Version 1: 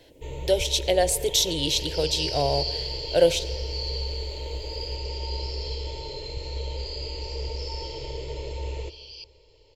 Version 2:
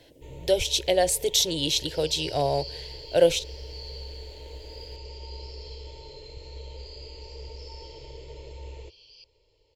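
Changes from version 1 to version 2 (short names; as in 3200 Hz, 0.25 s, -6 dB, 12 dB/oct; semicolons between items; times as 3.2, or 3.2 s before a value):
first sound -8.5 dB; second sound -9.5 dB; reverb: off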